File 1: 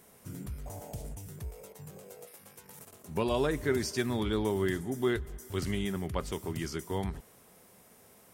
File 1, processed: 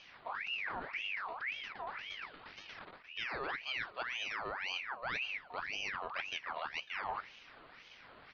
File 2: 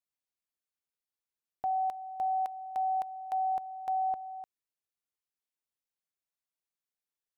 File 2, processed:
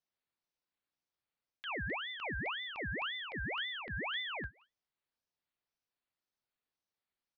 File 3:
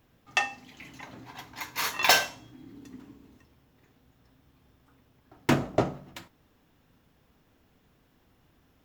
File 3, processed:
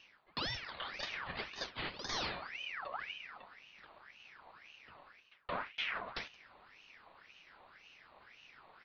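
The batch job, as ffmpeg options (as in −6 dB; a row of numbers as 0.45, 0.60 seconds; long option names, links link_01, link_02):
-filter_complex "[0:a]asuperstop=centerf=710:order=20:qfactor=8,aresample=8000,aresample=44100,asplit=2[link_01][link_02];[link_02]adelay=174.9,volume=-28dB,highshelf=frequency=4000:gain=-3.94[link_03];[link_01][link_03]amix=inputs=2:normalize=0,areverse,acompressor=threshold=-41dB:ratio=16,areverse,aeval=exprs='val(0)*sin(2*PI*1800*n/s+1800*0.55/1.9*sin(2*PI*1.9*n/s))':channel_layout=same,volume=7.5dB"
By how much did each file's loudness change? −6.0, −5.0, −14.0 LU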